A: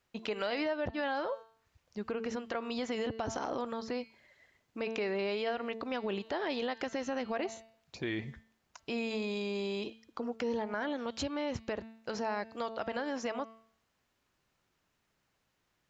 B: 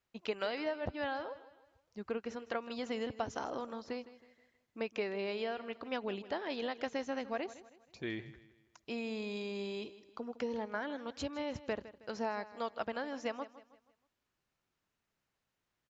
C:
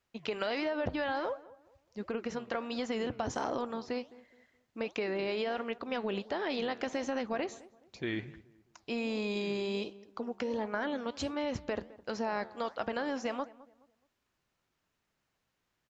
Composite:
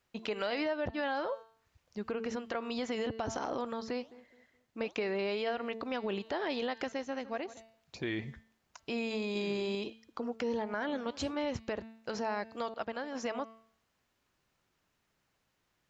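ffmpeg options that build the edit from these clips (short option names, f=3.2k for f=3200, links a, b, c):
-filter_complex "[2:a]asplit=3[a][b][c];[1:a]asplit=2[d][e];[0:a]asplit=6[f][g][h][i][j][k];[f]atrim=end=4.002[l];[a]atrim=start=3.998:end=5.062[m];[g]atrim=start=5.058:end=6.922[n];[d]atrim=start=6.918:end=7.572[o];[h]atrim=start=7.568:end=9.352[p];[b]atrim=start=9.348:end=9.752[q];[i]atrim=start=9.748:end=10.892[r];[c]atrim=start=10.888:end=11.502[s];[j]atrim=start=11.498:end=12.742[t];[e]atrim=start=12.738:end=13.152[u];[k]atrim=start=13.148[v];[l][m]acrossfade=d=0.004:c1=hsin:c2=hsin[w];[w][n]acrossfade=d=0.004:c1=hsin:c2=hsin[x];[x][o]acrossfade=d=0.004:c1=hsin:c2=hsin[y];[y][p]acrossfade=d=0.004:c1=hsin:c2=hsin[z];[z][q]acrossfade=d=0.004:c1=hsin:c2=hsin[aa];[aa][r]acrossfade=d=0.004:c1=hsin:c2=hsin[ab];[ab][s]acrossfade=d=0.004:c1=hsin:c2=hsin[ac];[ac][t]acrossfade=d=0.004:c1=hsin:c2=hsin[ad];[ad][u]acrossfade=d=0.004:c1=hsin:c2=hsin[ae];[ae][v]acrossfade=d=0.004:c1=hsin:c2=hsin"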